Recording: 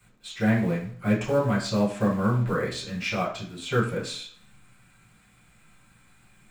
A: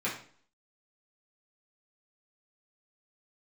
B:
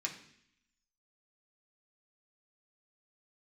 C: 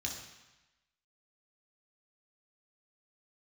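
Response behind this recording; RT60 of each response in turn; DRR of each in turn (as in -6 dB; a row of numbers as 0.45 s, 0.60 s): A; 0.50 s, 0.65 s, 1.0 s; -8.0 dB, -1.5 dB, -1.0 dB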